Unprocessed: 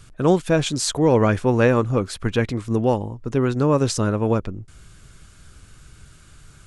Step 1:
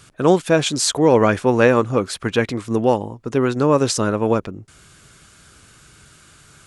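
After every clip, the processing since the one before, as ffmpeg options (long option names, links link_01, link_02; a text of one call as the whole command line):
ffmpeg -i in.wav -af "highpass=frequency=250:poles=1,volume=4.5dB" out.wav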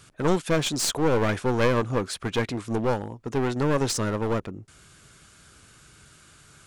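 ffmpeg -i in.wav -af "aeval=exprs='clip(val(0),-1,0.0891)':channel_layout=same,volume=-4.5dB" out.wav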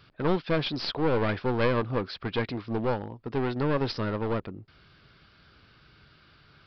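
ffmpeg -i in.wav -af "aresample=11025,aresample=44100,volume=-3dB" out.wav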